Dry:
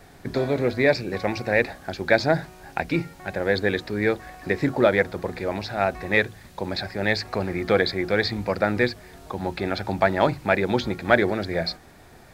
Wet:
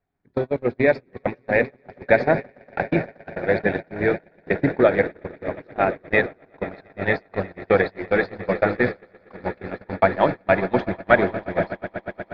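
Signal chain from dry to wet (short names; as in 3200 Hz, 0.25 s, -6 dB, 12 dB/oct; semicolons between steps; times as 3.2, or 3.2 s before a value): bin magnitudes rounded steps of 15 dB; LPF 2500 Hz 12 dB/oct; transient shaper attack +3 dB, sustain -6 dB; on a send: swelling echo 0.119 s, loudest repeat 8, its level -14 dB; on the sum: gate -21 dBFS, range -31 dB; gain +1 dB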